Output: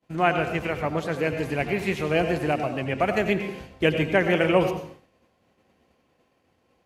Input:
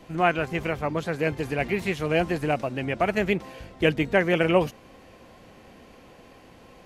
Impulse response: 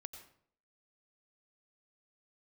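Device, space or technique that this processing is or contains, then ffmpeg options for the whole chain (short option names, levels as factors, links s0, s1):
bathroom: -filter_complex "[1:a]atrim=start_sample=2205[s0];[0:a][s0]afir=irnorm=-1:irlink=0,highpass=60,agate=range=0.0224:threshold=0.00708:ratio=3:detection=peak,volume=1.88"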